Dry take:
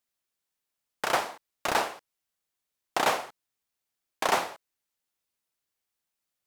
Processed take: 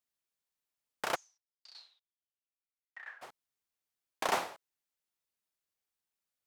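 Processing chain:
0:01.14–0:03.21: resonant band-pass 6,700 Hz → 1,600 Hz, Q 19
level −6 dB

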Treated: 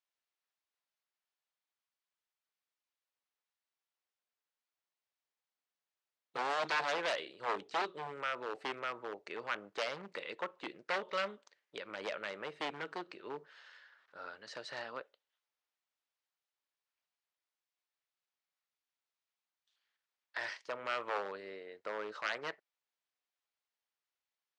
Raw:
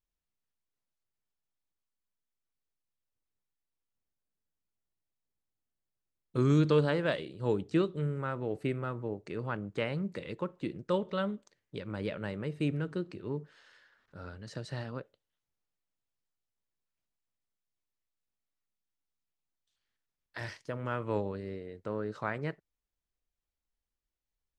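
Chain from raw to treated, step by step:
wave folding −28 dBFS
band-pass filter 690–5,000 Hz
level +3.5 dB

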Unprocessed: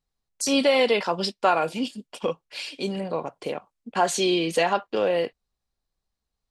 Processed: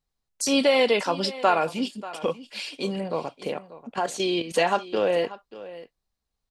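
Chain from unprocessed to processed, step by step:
0:03.95–0:04.54: output level in coarse steps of 12 dB
single-tap delay 587 ms −16.5 dB

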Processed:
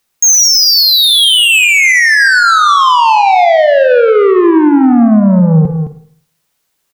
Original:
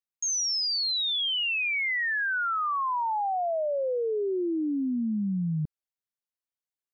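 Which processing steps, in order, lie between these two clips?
0:01.64–0:02.27: low-pass filter 2,400 Hz 12 dB per octave
soft clipping −33 dBFS, distortion −13 dB
on a send: single-tap delay 214 ms −9.5 dB
on the sum: four-comb reverb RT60 0.57 s, DRR 9 dB
boost into a limiter +29 dB
level −1 dB

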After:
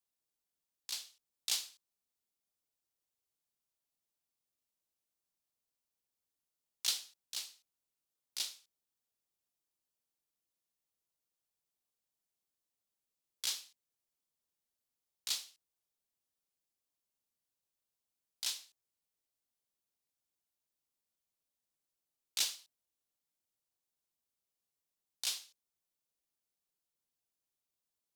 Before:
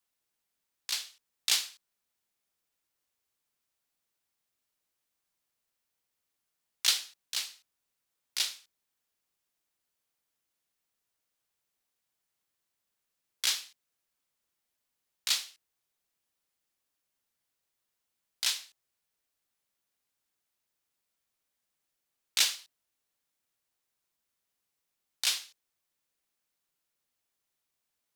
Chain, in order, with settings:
parametric band 1,800 Hz −7.5 dB 1.5 octaves
level −6 dB

